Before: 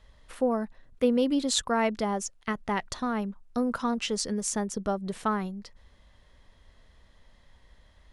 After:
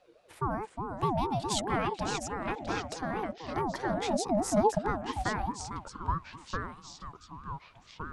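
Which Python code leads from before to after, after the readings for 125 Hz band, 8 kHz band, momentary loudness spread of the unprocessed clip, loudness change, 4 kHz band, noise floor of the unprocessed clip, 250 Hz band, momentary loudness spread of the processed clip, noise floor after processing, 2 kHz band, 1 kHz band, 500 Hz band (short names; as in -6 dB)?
+5.0 dB, -5.5 dB, 8 LU, -3.5 dB, -5.0 dB, -59 dBFS, -5.5 dB, 15 LU, -59 dBFS, -1.0 dB, +2.0 dB, -2.5 dB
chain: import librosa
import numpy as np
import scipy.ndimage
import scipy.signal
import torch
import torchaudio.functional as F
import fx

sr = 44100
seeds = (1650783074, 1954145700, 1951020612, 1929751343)

y = fx.echo_pitch(x, sr, ms=282, semitones=-3, count=3, db_per_echo=-6.0)
y = fx.filter_sweep_highpass(y, sr, from_hz=77.0, to_hz=530.0, start_s=3.08, end_s=6.05, q=5.3)
y = fx.ring_lfo(y, sr, carrier_hz=530.0, swing_pct=25, hz=4.7)
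y = y * 10.0 ** (-3.5 / 20.0)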